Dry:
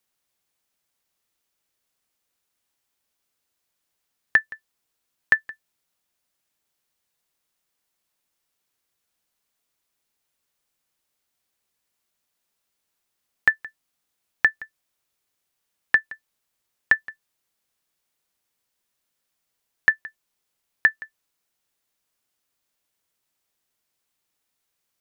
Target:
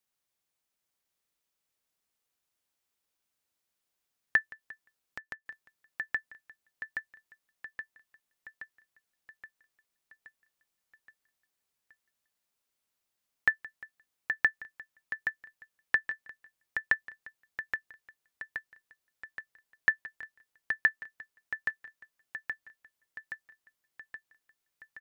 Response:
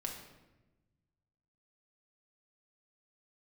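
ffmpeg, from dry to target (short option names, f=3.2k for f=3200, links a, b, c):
-filter_complex "[0:a]asplit=2[a][b];[b]aecho=0:1:823|1646|2469|3292|4115|4938|5761|6584:0.447|0.268|0.161|0.0965|0.0579|0.0347|0.0208|0.0125[c];[a][c]amix=inputs=2:normalize=0,asettb=1/sr,asplit=3[d][e][f];[d]atrim=end=4.404[g];[e]atrim=start=4.4:end=5.46,asetpts=PTS-STARTPTS,afade=t=in:d=0.004:c=qsin,afade=t=out:st=1.056:d=0.004:c=qsin,acompressor=threshold=-36dB:ratio=4[h];[f]atrim=start=5.456[i];[g][h]acrossfade=d=0.004:c1=hsin:c2=qsin[j];[j][i]acrossfade=d=0.004:c1=qsin:c2=hsin,asplit=2[k][l];[l]aecho=0:1:351:0.075[m];[k][m]amix=inputs=2:normalize=0,volume=-7dB"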